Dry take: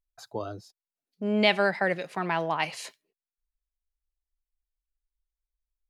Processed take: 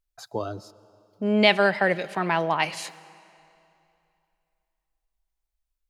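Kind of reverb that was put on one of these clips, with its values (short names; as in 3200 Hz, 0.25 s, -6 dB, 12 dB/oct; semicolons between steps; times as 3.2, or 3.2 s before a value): digital reverb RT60 2.7 s, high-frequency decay 0.9×, pre-delay 85 ms, DRR 19.5 dB; gain +4 dB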